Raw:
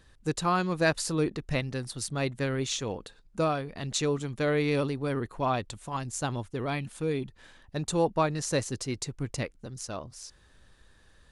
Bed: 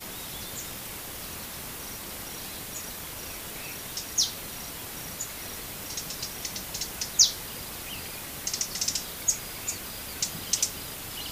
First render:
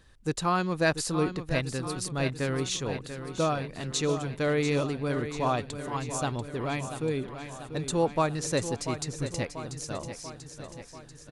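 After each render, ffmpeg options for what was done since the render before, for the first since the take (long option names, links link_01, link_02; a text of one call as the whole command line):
ffmpeg -i in.wav -af "aecho=1:1:689|1378|2067|2756|3445|4134|4823:0.316|0.187|0.11|0.0649|0.0383|0.0226|0.0133" out.wav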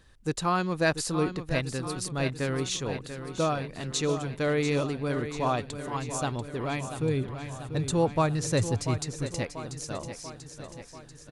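ffmpeg -i in.wav -filter_complex "[0:a]asettb=1/sr,asplit=3[link_01][link_02][link_03];[link_01]atrim=end=6.984[link_04];[link_02]atrim=start=6.98:end=8.98,asetpts=PTS-STARTPTS,afade=type=in:duration=0.004:curve=qsin,afade=type=out:start_time=1.996:duration=0.004:curve=qsin,equalizer=frequency=100:width=1.5:gain=13[link_05];[link_03]atrim=start=8.976[link_06];[link_04][link_05]acrossfade=duration=0.004:curve1=hsin:curve2=qsin[link_07];[link_07][link_06]acrossfade=duration=0.004:curve1=qsin:curve2=hsin" out.wav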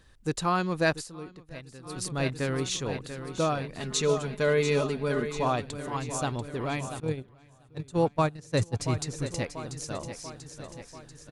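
ffmpeg -i in.wav -filter_complex "[0:a]asettb=1/sr,asplit=3[link_01][link_02][link_03];[link_01]atrim=end=3.804[link_04];[link_02]atrim=start=3.8:end=5.43,asetpts=PTS-STARTPTS,afade=type=in:duration=0.004:curve=qsin,afade=type=out:start_time=1.626:duration=0.004:curve=qsin,aecho=1:1:4.8:0.65,atrim=end_sample=71883[link_05];[link_03]atrim=start=5.426[link_06];[link_04][link_05]acrossfade=duration=0.004:curve1=hsin:curve2=qsin[link_07];[link_07][link_06]acrossfade=duration=0.004:curve1=qsin:curve2=hsin,asettb=1/sr,asplit=3[link_08][link_09][link_10];[link_08]atrim=end=7.004[link_11];[link_09]atrim=start=7:end=8.8,asetpts=PTS-STARTPTS,afade=type=in:duration=0.004:curve=qsin,afade=type=out:start_time=1.796:duration=0.004:curve=qsin,agate=range=-19dB:threshold=-26dB:ratio=16:release=100:detection=peak[link_12];[link_10]atrim=start=8.796[link_13];[link_11][link_12]acrossfade=duration=0.004:curve1=hsin:curve2=qsin[link_14];[link_14][link_13]acrossfade=duration=0.004:curve1=qsin:curve2=hsin,asplit=3[link_15][link_16][link_17];[link_15]atrim=end=1.08,asetpts=PTS-STARTPTS,afade=type=out:start_time=0.89:duration=0.19:silence=0.188365[link_18];[link_16]atrim=start=1.08:end=1.83,asetpts=PTS-STARTPTS,volume=-14.5dB[link_19];[link_17]atrim=start=1.83,asetpts=PTS-STARTPTS,afade=type=in:duration=0.19:silence=0.188365[link_20];[link_18][link_19][link_20]concat=n=3:v=0:a=1" out.wav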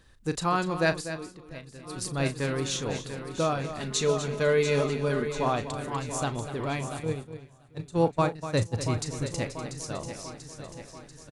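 ffmpeg -i in.wav -filter_complex "[0:a]asplit=2[link_01][link_02];[link_02]adelay=36,volume=-12.5dB[link_03];[link_01][link_03]amix=inputs=2:normalize=0,aecho=1:1:245:0.266" out.wav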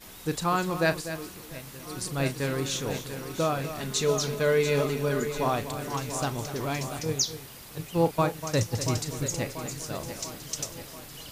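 ffmpeg -i in.wav -i bed.wav -filter_complex "[1:a]volume=-8dB[link_01];[0:a][link_01]amix=inputs=2:normalize=0" out.wav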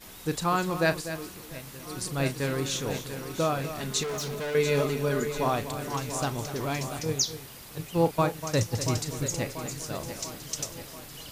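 ffmpeg -i in.wav -filter_complex "[0:a]asettb=1/sr,asplit=3[link_01][link_02][link_03];[link_01]atrim=end=4.034[link_04];[link_02]atrim=start=4.03:end=4.55,asetpts=PTS-STARTPTS,afade=type=in:duration=0.004:curve=qsin,afade=type=out:start_time=0.516:duration=0.004:curve=qsin,volume=30.5dB,asoftclip=hard,volume=-30.5dB[link_05];[link_03]atrim=start=4.546[link_06];[link_04][link_05]acrossfade=duration=0.004:curve1=hsin:curve2=qsin[link_07];[link_07][link_06]acrossfade=duration=0.004:curve1=qsin:curve2=hsin" out.wav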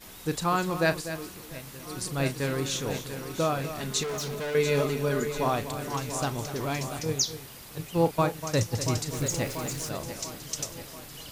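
ffmpeg -i in.wav -filter_complex "[0:a]asettb=1/sr,asplit=3[link_01][link_02][link_03];[link_01]atrim=end=9.134[link_04];[link_02]atrim=start=9.13:end=9.89,asetpts=PTS-STARTPTS,afade=type=in:duration=0.004:curve=qsin,afade=type=out:start_time=0.756:duration=0.004:curve=qsin,aeval=exprs='val(0)+0.5*0.0133*sgn(val(0))':channel_layout=same[link_05];[link_03]atrim=start=9.886[link_06];[link_04][link_05]acrossfade=duration=0.004:curve1=hsin:curve2=qsin[link_07];[link_07][link_06]acrossfade=duration=0.004:curve1=qsin:curve2=hsin" out.wav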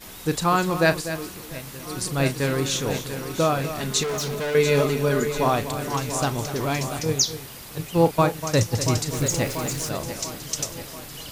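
ffmpeg -i in.wav -af "volume=5.5dB" out.wav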